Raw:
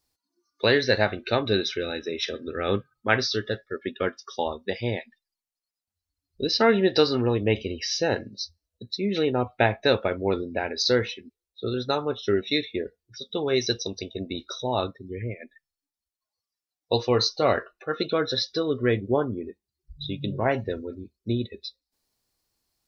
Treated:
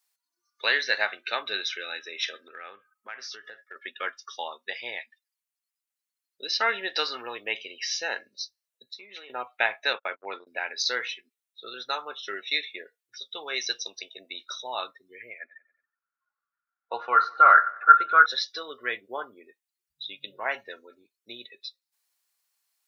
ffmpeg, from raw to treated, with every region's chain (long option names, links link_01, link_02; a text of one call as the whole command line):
ffmpeg -i in.wav -filter_complex "[0:a]asettb=1/sr,asplit=3[link_01][link_02][link_03];[link_01]atrim=end=2.474[link_04];[link_02]atrim=start=2.47:end=3.76,asetpts=PTS-STARTPTS,afade=type=in:duration=0.004:curve=qsin,afade=type=out:start_time=1.286:duration=0.004:curve=qsin,equalizer=frequency=3800:width=2.7:gain=-12,acompressor=threshold=-31dB:ratio=20:attack=3.2:release=140:knee=1:detection=peak[link_05];[link_03]atrim=start=3.756[link_06];[link_04][link_05]acrossfade=duration=0.004:curve1=hsin:curve2=qsin[link_07];[link_07][link_06]acrossfade=duration=0.004:curve1=qsin:curve2=hsin,asettb=1/sr,asplit=3[link_08][link_09][link_10];[link_08]atrim=end=8.864[link_11];[link_09]atrim=start=8.86:end=9.3,asetpts=PTS-STARTPTS,afade=type=in:duration=0.004:curve=qsin,afade=type=out:start_time=0.436:duration=0.004:curve=qsin,highpass=210,acompressor=threshold=-34dB:ratio=6:attack=3.2:release=140:knee=1:detection=peak,asplit=2[link_12][link_13];[link_13]adelay=16,volume=-12.5dB[link_14];[link_12][link_14]amix=inputs=2:normalize=0,atrim=end_sample=19404[link_15];[link_10]atrim=start=9.296[link_16];[link_11][link_15]acrossfade=duration=0.004:curve1=hsin:curve2=qsin[link_17];[link_17][link_16]acrossfade=duration=0.004:curve1=qsin:curve2=hsin,asettb=1/sr,asplit=3[link_18][link_19][link_20];[link_18]atrim=end=9.934[link_21];[link_19]atrim=start=9.93:end=10.47,asetpts=PTS-STARTPTS,afade=type=in:duration=0.004:curve=qsin,afade=type=out:start_time=0.536:duration=0.004:curve=qsin,agate=range=-37dB:threshold=-30dB:ratio=16:release=100:detection=peak,highpass=140,lowpass=3400[link_22];[link_20]atrim=start=10.466[link_23];[link_21][link_22]acrossfade=duration=0.004:curve1=hsin:curve2=qsin[link_24];[link_24][link_23]acrossfade=duration=0.004:curve1=qsin:curve2=hsin,asettb=1/sr,asplit=3[link_25][link_26][link_27];[link_25]atrim=end=15.394[link_28];[link_26]atrim=start=15.39:end=18.26,asetpts=PTS-STARTPTS,afade=type=in:duration=0.004:curve=qsin,afade=type=out:start_time=2.866:duration=0.004:curve=qsin,lowpass=frequency=1400:width_type=q:width=14,aecho=1:1:93|186|279|372:0.0891|0.0446|0.0223|0.0111,atrim=end_sample=126567[link_29];[link_27]atrim=start=18.256[link_30];[link_28][link_29]acrossfade=duration=0.004:curve1=hsin:curve2=qsin[link_31];[link_31][link_30]acrossfade=duration=0.004:curve1=qsin:curve2=hsin,highpass=1300,equalizer=frequency=4700:width_type=o:width=0.76:gain=-7,volume=3.5dB" out.wav